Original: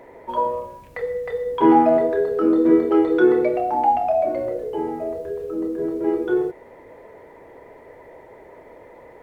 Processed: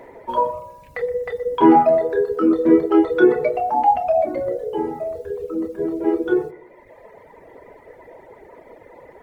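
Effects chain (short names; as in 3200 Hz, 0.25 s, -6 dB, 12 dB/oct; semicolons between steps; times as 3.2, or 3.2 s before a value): darkening echo 0.122 s, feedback 46%, low-pass 2000 Hz, level -9 dB; reverb removal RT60 1.4 s; gain +3 dB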